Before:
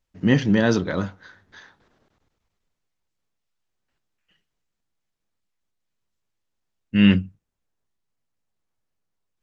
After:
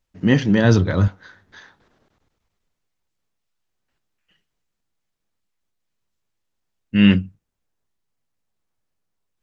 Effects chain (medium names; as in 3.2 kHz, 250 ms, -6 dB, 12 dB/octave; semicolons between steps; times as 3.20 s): 0.64–1.08 s: peaking EQ 100 Hz +14.5 dB 0.77 oct; trim +2 dB